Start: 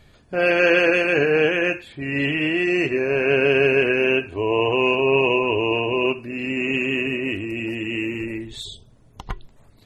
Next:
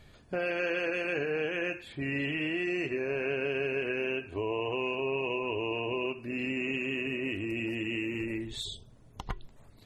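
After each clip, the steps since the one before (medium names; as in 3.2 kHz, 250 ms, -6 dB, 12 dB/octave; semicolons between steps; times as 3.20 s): compression 4:1, threshold -27 dBFS, peak gain reduction 12 dB; trim -3.5 dB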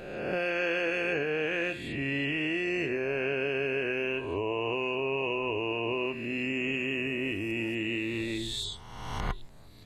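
reverse spectral sustain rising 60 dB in 1.35 s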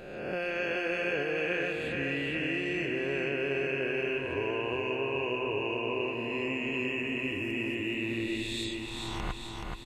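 feedback delay 427 ms, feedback 58%, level -4 dB; trim -3 dB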